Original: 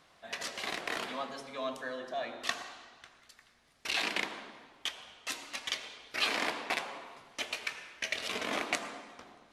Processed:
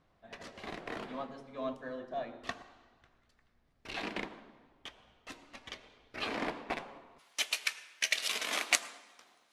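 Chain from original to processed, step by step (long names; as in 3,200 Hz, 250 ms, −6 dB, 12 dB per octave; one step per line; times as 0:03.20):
spectral tilt −3.5 dB per octave, from 0:07.18 +3.5 dB per octave
expander for the loud parts 1.5 to 1, over −46 dBFS
level +1.5 dB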